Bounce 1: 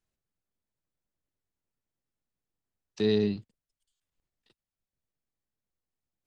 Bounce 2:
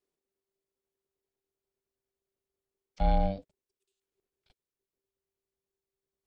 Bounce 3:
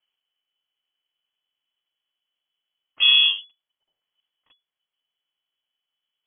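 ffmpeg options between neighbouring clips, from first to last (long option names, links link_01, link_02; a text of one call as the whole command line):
ffmpeg -i in.wav -filter_complex "[0:a]aeval=exprs='val(0)*sin(2*PI*390*n/s)':channel_layout=same,acrossover=split=2700[link_01][link_02];[link_02]acompressor=threshold=-57dB:ratio=4:attack=1:release=60[link_03];[link_01][link_03]amix=inputs=2:normalize=0,asubboost=boost=2.5:cutoff=150" out.wav
ffmpeg -i in.wav -af "lowpass=frequency=2900:width_type=q:width=0.5098,lowpass=frequency=2900:width_type=q:width=0.6013,lowpass=frequency=2900:width_type=q:width=0.9,lowpass=frequency=2900:width_type=q:width=2.563,afreqshift=-3400,volume=8dB" out.wav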